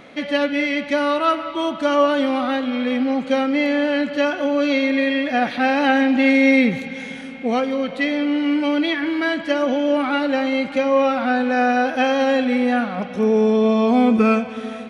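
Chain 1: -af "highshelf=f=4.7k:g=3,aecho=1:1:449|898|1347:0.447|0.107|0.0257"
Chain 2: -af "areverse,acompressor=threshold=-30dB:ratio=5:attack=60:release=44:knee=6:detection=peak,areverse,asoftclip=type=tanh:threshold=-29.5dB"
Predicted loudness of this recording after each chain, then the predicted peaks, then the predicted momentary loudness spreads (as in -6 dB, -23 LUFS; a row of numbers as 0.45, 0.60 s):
-18.0, -32.5 LUFS; -3.0, -29.5 dBFS; 6, 1 LU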